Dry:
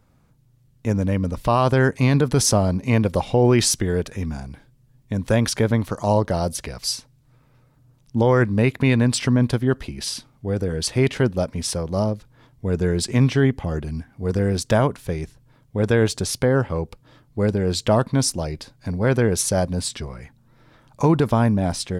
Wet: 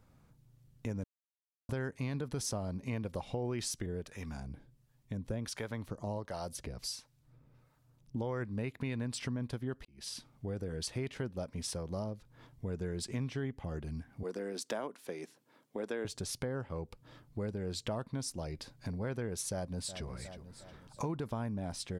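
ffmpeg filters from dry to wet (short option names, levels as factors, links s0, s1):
-filter_complex "[0:a]asettb=1/sr,asplit=3[s0][s1][s2];[s0]atrim=end=3.864[s3];[s1]atrim=start=3.86:end=8.16,asetpts=PTS-STARTPTS,afade=t=in:d=0.004:c=qsin,afade=t=out:st=4.296:d=0.004:c=qsin,acrossover=split=590[s4][s5];[s4]aeval=exprs='val(0)*(1-0.7/2+0.7/2*cos(2*PI*1.4*n/s))':c=same[s6];[s5]aeval=exprs='val(0)*(1-0.7/2-0.7/2*cos(2*PI*1.4*n/s))':c=same[s7];[s6][s7]amix=inputs=2:normalize=0[s8];[s2]atrim=start=8.156[s9];[s3][s8]acrossfade=d=0.004:c1=hsin:c2=qsin[s10];[s10][s9]acrossfade=d=0.004:c1=qsin:c2=hsin,asettb=1/sr,asplit=3[s11][s12][s13];[s11]atrim=end=14.234[s14];[s12]atrim=start=14.23:end=16.05,asetpts=PTS-STARTPTS,afade=t=in:d=0.004:c=qsin,afade=t=out:st=1.816:d=0.004:c=qsin,highpass=f=240:w=0.5412,highpass=f=240:w=1.3066[s15];[s13]atrim=start=16.046[s16];[s14][s15]acrossfade=d=0.004:c1=hsin:c2=qsin[s17];[s17][s16]acrossfade=d=0.004:c1=qsin:c2=hsin,asplit=2[s18][s19];[s19]afade=t=in:st=19.52:d=0.01,afade=t=out:st=20.07:d=0.01,aecho=0:1:360|720|1080|1440:0.141254|0.0635642|0.0286039|0.0128717[s20];[s18][s20]amix=inputs=2:normalize=0,asplit=4[s21][s22][s23][s24];[s21]atrim=end=1.04,asetpts=PTS-STARTPTS,afade=t=out:st=1.036:d=0.004:c=hsin[s25];[s22]atrim=start=1.04:end=1.69,asetpts=PTS-STARTPTS,volume=0[s26];[s23]atrim=start=1.69:end=9.85,asetpts=PTS-STARTPTS,afade=t=in:d=0.004:c=hsin,afade=t=out:st=8.156:d=0.004:c=hsin[s27];[s24]atrim=start=9.85,asetpts=PTS-STARTPTS,afade=t=in:d=0.63[s28];[s25][s26][s27][s28]concat=n=4:v=0:a=1,acompressor=threshold=0.02:ratio=3,volume=0.562"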